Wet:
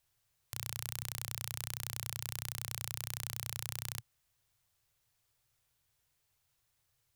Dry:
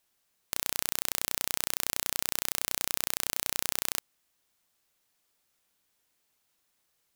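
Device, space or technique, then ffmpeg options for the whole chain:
car stereo with a boomy subwoofer: -af "lowshelf=f=160:t=q:w=3:g=10.5,alimiter=limit=-7.5dB:level=0:latency=1:release=11,volume=-3.5dB"

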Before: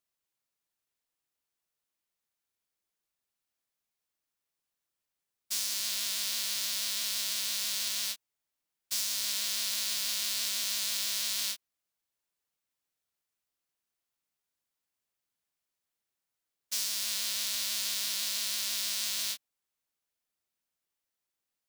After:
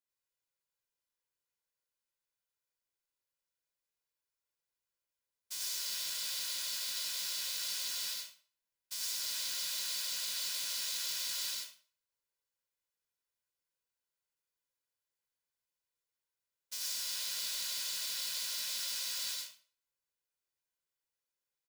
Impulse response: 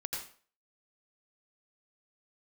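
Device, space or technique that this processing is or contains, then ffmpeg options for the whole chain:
microphone above a desk: -filter_complex "[0:a]aecho=1:1:2:0.51[a];[1:a]atrim=start_sample=2205[b];[a][b]afir=irnorm=-1:irlink=0,volume=-7.5dB"

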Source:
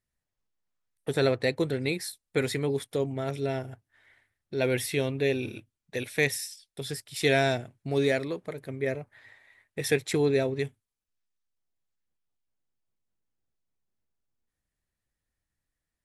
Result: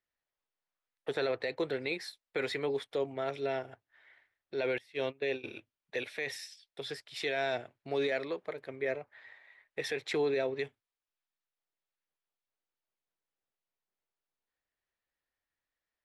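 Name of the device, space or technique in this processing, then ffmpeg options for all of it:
DJ mixer with the lows and highs turned down: -filter_complex "[0:a]acrossover=split=370 4800:gain=0.158 1 0.1[a][b][c];[a][b][c]amix=inputs=3:normalize=0,alimiter=limit=-23dB:level=0:latency=1:release=31,asettb=1/sr,asplit=3[d][e][f];[d]atrim=end=4.784[g];[e]atrim=start=4.78:end=5.44,asetpts=PTS-STARTPTS,afade=t=in:d=0.004:c=qsin,afade=t=out:st=0.656:d=0.004:c=qsin,agate=range=-21dB:threshold=-33dB:ratio=16:detection=peak[h];[f]atrim=start=5.436[i];[g][h]acrossfade=d=0.004:c1=hsin:c2=qsin[j];[j][i]acrossfade=d=0.004:c1=qsin:c2=hsin"

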